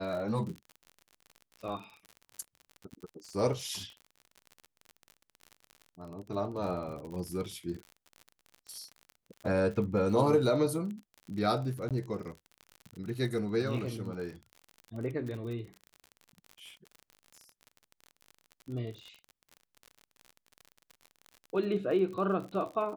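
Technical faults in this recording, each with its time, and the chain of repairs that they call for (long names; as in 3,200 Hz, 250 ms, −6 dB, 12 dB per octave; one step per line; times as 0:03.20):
surface crackle 48 per second −39 dBFS
0:11.89–0:11.91: drop-out 17 ms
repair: click removal
repair the gap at 0:11.89, 17 ms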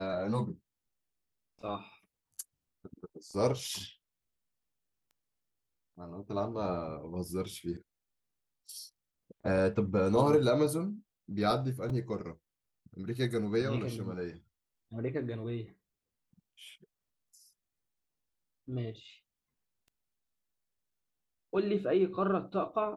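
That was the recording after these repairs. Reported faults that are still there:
none of them is left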